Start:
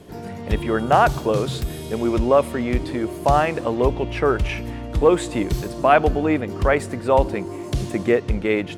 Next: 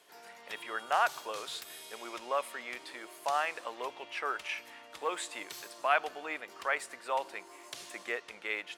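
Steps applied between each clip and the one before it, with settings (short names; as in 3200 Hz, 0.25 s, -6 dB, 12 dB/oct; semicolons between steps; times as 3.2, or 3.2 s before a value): HPF 1100 Hz 12 dB/oct; gain -7 dB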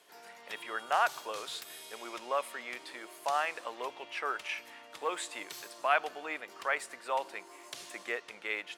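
HPF 90 Hz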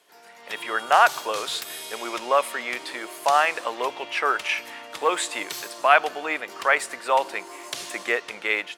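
AGC gain up to 11 dB; gain +1 dB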